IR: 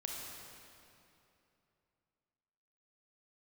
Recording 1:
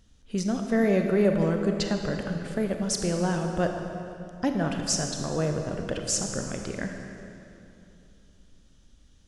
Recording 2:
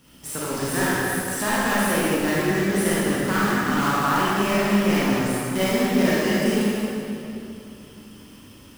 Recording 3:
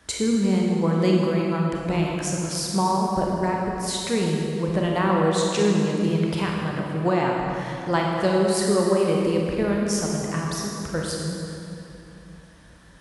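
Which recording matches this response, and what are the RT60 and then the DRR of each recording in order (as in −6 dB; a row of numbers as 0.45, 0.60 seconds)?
3; 2.9, 2.9, 2.9 seconds; 4.0, −9.0, −1.5 decibels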